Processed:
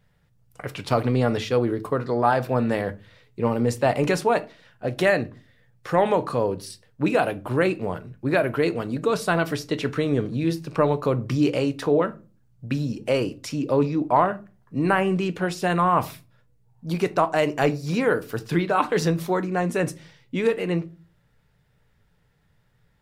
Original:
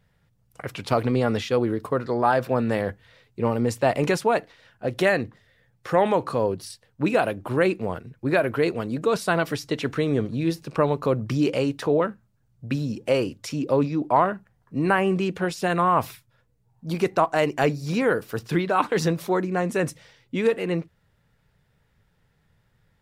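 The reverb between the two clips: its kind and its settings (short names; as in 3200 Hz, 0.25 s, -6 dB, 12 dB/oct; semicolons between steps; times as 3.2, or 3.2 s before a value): shoebox room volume 160 m³, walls furnished, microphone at 0.4 m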